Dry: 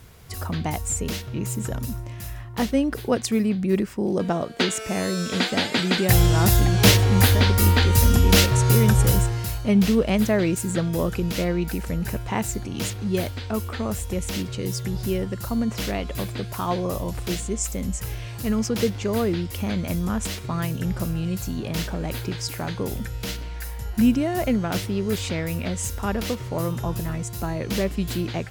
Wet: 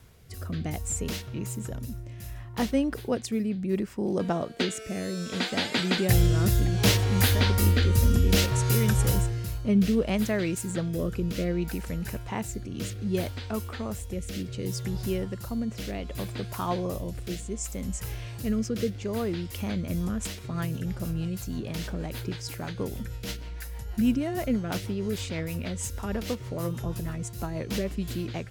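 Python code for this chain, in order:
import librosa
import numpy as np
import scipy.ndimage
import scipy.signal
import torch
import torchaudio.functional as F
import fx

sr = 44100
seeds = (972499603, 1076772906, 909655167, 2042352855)

y = fx.rotary_switch(x, sr, hz=0.65, then_hz=6.3, switch_at_s=19.51)
y = F.gain(torch.from_numpy(y), -3.5).numpy()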